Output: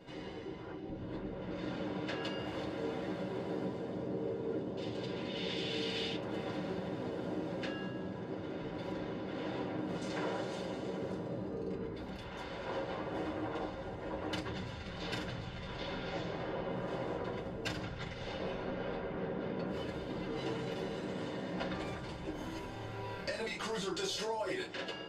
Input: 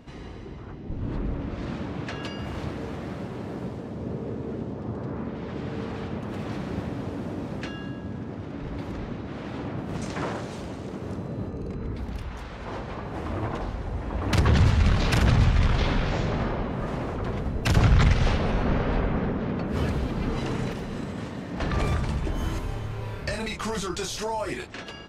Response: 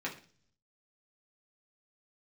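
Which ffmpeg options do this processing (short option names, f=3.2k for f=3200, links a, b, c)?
-filter_complex "[0:a]asettb=1/sr,asplit=3[a][b][c];[a]atrim=end=4.774[d];[b]atrim=start=4.77:end=6.16,asetpts=PTS-STARTPTS,afade=t=in:d=0.004:c=qsin,afade=t=out:st=1.386:d=0.004:c=qsin,highshelf=f=2k:t=q:w=1.5:g=13.5[e];[c]atrim=start=6.156[f];[d][e]acrossfade=d=0.004:c1=hsin:c2=qsin[g];[g][f]acrossfade=d=0.004:c1=qsin:c2=hsin,acompressor=threshold=-30dB:ratio=8[h];[1:a]atrim=start_sample=2205,asetrate=83790,aresample=44100[i];[h][i]afir=irnorm=-1:irlink=0"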